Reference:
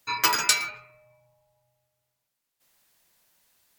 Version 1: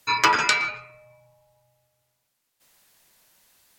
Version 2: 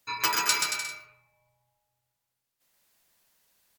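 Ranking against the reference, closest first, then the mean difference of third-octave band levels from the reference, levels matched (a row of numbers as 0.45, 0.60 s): 1, 2; 4.5, 8.0 dB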